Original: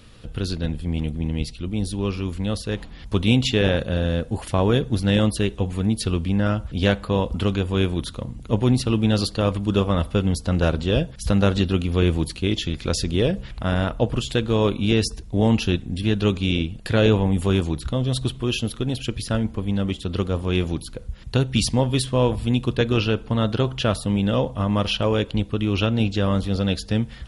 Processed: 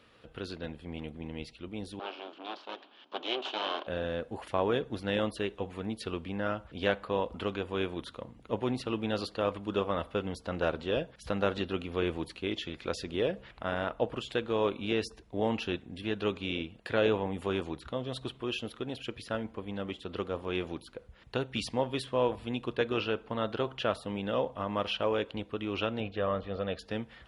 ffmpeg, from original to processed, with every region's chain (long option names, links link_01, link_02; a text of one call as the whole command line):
ffmpeg -i in.wav -filter_complex "[0:a]asettb=1/sr,asplit=3[link_01][link_02][link_03];[link_01]atrim=end=1.994[link_04];[link_02]atrim=start=1.99:end=3.87,asetpts=PTS-STARTPTS,afade=type=in:duration=0.004:curve=qsin,afade=type=out:start_time=1.876:duration=0.004:curve=qsin,aeval=exprs='abs(val(0))':channel_layout=same,highpass=frequency=280:width=0.5412,highpass=frequency=280:width=1.3066,equalizer=frequency=480:width_type=q:width=4:gain=-8,equalizer=frequency=2000:width_type=q:width=4:gain=-10,equalizer=frequency=3100:width_type=q:width=4:gain=8,lowpass=frequency=5000:width=0.5412,lowpass=frequency=5000:width=1.3066[link_05];[link_03]atrim=start=3.866[link_06];[link_04][link_05]acrossfade=duration=0.004:curve1=hsin:curve2=qsin[link_07];[link_07][link_06]acrossfade=duration=0.004:curve1=qsin:curve2=hsin,asettb=1/sr,asplit=3[link_08][link_09][link_10];[link_08]atrim=end=26.004[link_11];[link_09]atrim=start=26:end=26.79,asetpts=PTS-STARTPTS,afade=type=in:duration=0.004:curve=qsin,afade=type=out:start_time=0.786:duration=0.004:curve=qsin,lowpass=2700,aecho=1:1:1.7:0.39,atrim=end_sample=34839[link_12];[link_10]atrim=start=26.786[link_13];[link_11][link_12]acrossfade=duration=0.004:curve1=hsin:curve2=qsin[link_14];[link_14][link_13]acrossfade=duration=0.004:curve1=qsin:curve2=hsin,highpass=46,bass=frequency=250:gain=-15,treble=frequency=4000:gain=-14,volume=-5.5dB" out.wav